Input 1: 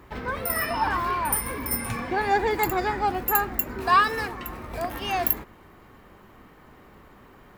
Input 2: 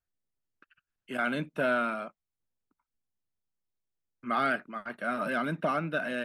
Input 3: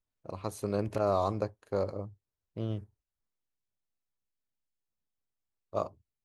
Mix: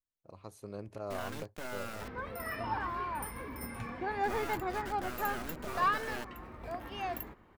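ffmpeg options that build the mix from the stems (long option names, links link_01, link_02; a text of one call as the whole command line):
ffmpeg -i stem1.wav -i stem2.wav -i stem3.wav -filter_complex "[0:a]highshelf=frequency=4600:gain=-11,adelay=1900,volume=-10dB[link_01];[1:a]alimiter=level_in=0.5dB:limit=-24dB:level=0:latency=1:release=277,volume=-0.5dB,acrusher=bits=4:dc=4:mix=0:aa=0.000001,volume=-4dB[link_02];[2:a]volume=-12dB[link_03];[link_01][link_02][link_03]amix=inputs=3:normalize=0" out.wav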